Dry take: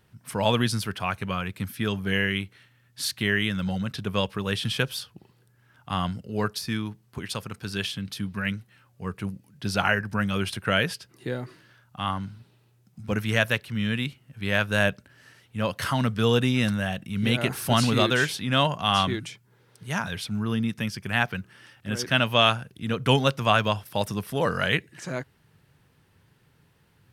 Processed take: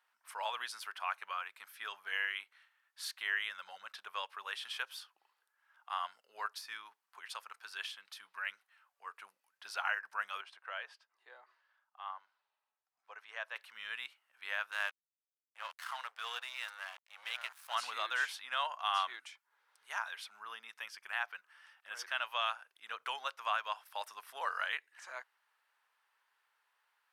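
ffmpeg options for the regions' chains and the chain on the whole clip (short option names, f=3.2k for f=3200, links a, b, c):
-filter_complex "[0:a]asettb=1/sr,asplit=3[a][b][c];[a]atrim=end=10.414[d];[b]atrim=start=10.41:end=13.56,asetpts=PTS-STARTPTS,afade=t=in:d=0.004:c=qsin,afade=t=out:st=3.146:d=0.004:c=qsin,highpass=480,lowpass=4.4k,equalizer=f=2.6k:w=0.36:g=-10,bandreject=f=1.4k:w=19[e];[c]atrim=start=13.556[f];[d][e]acrossfade=d=0.004:c1=hsin:c2=qsin[g];[g][f]acrossfade=d=0.004:c1=qsin:c2=hsin,asettb=1/sr,asplit=3[h][i][j];[h]atrim=end=14.714[k];[i]atrim=start=14.71:end=17.75,asetpts=PTS-STARTPTS,afade=t=in:d=0.004:c=qsin,afade=t=out:st=3.036:d=0.004:c=qsin,aeval=exprs='sgn(val(0))*max(abs(val(0))-0.0224,0)':c=same,highpass=f=1k:p=1[l];[j]atrim=start=17.746[m];[k][l]acrossfade=d=0.004:c1=hsin:c2=qsin[n];[n][m]acrossfade=d=0.004:c1=qsin:c2=hsin,alimiter=limit=-10.5dB:level=0:latency=1:release=275,highpass=f=980:w=0.5412,highpass=f=980:w=1.3066,tiltshelf=f=1.5k:g=7.5,volume=-7dB"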